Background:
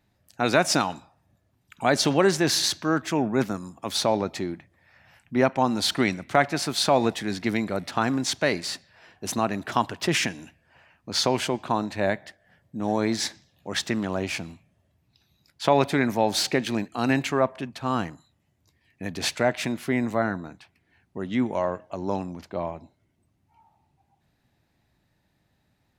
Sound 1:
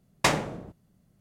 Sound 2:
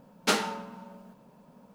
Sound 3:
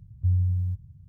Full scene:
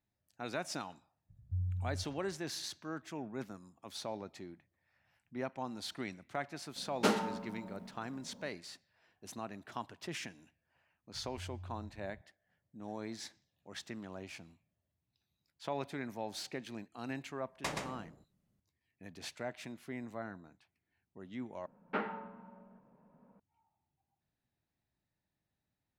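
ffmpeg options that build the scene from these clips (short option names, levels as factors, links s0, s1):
-filter_complex "[3:a]asplit=2[s0][s1];[2:a]asplit=2[s2][s3];[0:a]volume=0.119[s4];[s0]agate=range=0.0224:threshold=0.00398:ratio=3:release=100:detection=peak[s5];[s2]tiltshelf=f=1100:g=5.5[s6];[s1]acompressor=threshold=0.0126:ratio=6:attack=3.2:release=140:knee=1:detection=peak[s7];[1:a]aecho=1:1:124:0.631[s8];[s3]lowpass=f=2100:w=0.5412,lowpass=f=2100:w=1.3066[s9];[s4]asplit=2[s10][s11];[s10]atrim=end=21.664[s12];[s9]atrim=end=1.74,asetpts=PTS-STARTPTS,volume=0.355[s13];[s11]atrim=start=23.396[s14];[s5]atrim=end=1.08,asetpts=PTS-STARTPTS,volume=0.224,afade=t=in:d=0.004:c=hsin,afade=t=out:st=1.076:d=0.004:c=hsin,adelay=1280[s15];[s6]atrim=end=1.74,asetpts=PTS-STARTPTS,volume=0.562,afade=t=in:d=0.004:c=hsin,afade=t=out:st=1.736:d=0.004:c=hsin,adelay=6760[s16];[s7]atrim=end=1.08,asetpts=PTS-STARTPTS,volume=0.376,afade=t=in:d=0.004:c=hsin,afade=t=out:st=1.076:d=0.004:c=hsin,adelay=491274S[s17];[s8]atrim=end=1.2,asetpts=PTS-STARTPTS,volume=0.168,afade=t=in:d=0.004:c=hsin,afade=t=out:st=1.196:d=0.004:c=hsin,adelay=17400[s18];[s12][s13]acrossfade=d=0.004:c1=hsin:c2=hsin[s19];[s19][s14]acrossfade=d=0.004:c1=hsin:c2=hsin[s20];[s20][s15][s16][s17][s18]amix=inputs=5:normalize=0"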